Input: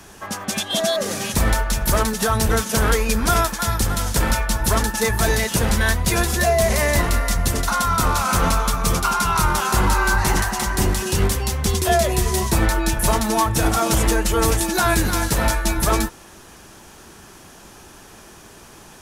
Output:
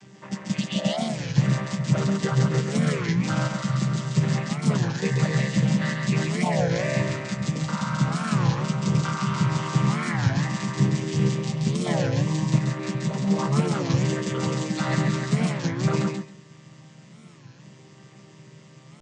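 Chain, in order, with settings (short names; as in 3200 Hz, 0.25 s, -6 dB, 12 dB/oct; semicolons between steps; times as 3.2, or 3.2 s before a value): chord vocoder minor triad, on C3; band shelf 650 Hz -8.5 dB 2.9 oct; 12.58–13.28 compressor 2.5:1, threshold -26 dBFS, peak gain reduction 7 dB; flange 0.14 Hz, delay 3 ms, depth 6.4 ms, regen -73%; on a send: thinning echo 0.136 s, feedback 17%, high-pass 190 Hz, level -3.5 dB; on the sum: record warp 33 1/3 rpm, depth 250 cents; gain +5.5 dB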